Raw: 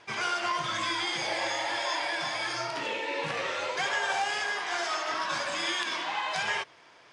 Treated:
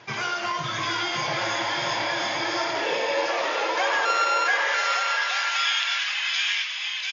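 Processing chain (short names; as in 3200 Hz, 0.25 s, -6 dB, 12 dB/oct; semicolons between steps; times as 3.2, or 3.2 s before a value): 4.05–4.48 sample sorter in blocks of 32 samples; in parallel at 0 dB: compressor, threshold -38 dBFS, peak gain reduction 12 dB; on the sum: high-pass sweep 120 Hz -> 2600 Hz, 1.23–5.22; bouncing-ball echo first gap 0.69 s, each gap 0.7×, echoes 5; on a send at -20 dB: reverb RT60 1.2 s, pre-delay 73 ms; on the sum: MP3 48 kbps 16000 Hz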